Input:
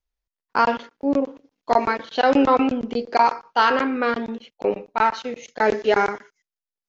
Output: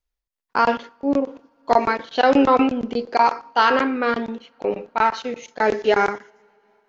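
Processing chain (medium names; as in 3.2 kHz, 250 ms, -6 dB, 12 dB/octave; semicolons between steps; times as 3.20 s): on a send at -21 dB: reverberation, pre-delay 3 ms; on the sum: random flutter of the level, depth 55%; trim +3 dB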